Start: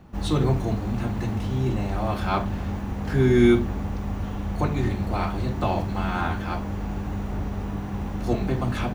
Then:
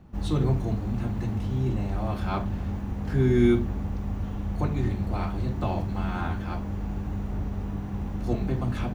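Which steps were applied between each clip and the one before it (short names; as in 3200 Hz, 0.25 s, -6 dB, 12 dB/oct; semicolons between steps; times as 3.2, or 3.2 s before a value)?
low shelf 320 Hz +6.5 dB; gain -7 dB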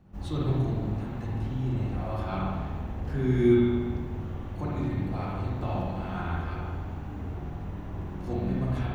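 spring tank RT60 1.5 s, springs 47/58 ms, chirp 25 ms, DRR -4 dB; gain -7 dB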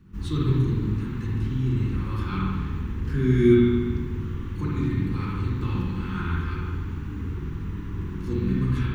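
Butterworth band-stop 660 Hz, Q 0.96; gain +5 dB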